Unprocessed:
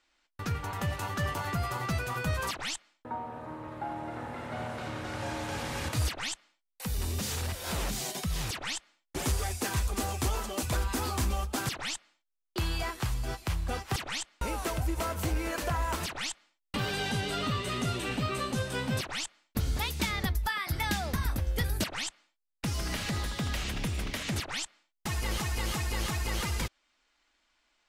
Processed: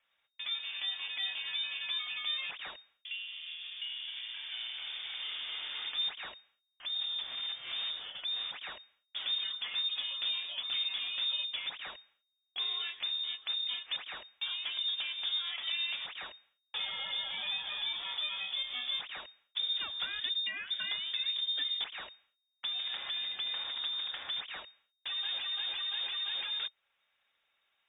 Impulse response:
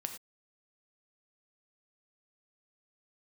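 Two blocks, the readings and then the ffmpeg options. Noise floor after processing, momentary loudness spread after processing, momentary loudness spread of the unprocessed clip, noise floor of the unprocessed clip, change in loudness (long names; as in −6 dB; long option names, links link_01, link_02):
−83 dBFS, 9 LU, 7 LU, −81 dBFS, −1.5 dB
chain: -filter_complex "[0:a]asplit=2[link_01][link_02];[link_02]acompressor=threshold=-41dB:ratio=6,volume=-2dB[link_03];[link_01][link_03]amix=inputs=2:normalize=0,aemphasis=mode=reproduction:type=75fm,lowpass=frequency=3100:width_type=q:width=0.5098,lowpass=frequency=3100:width_type=q:width=0.6013,lowpass=frequency=3100:width_type=q:width=0.9,lowpass=frequency=3100:width_type=q:width=2.563,afreqshift=-3700,volume=-7dB"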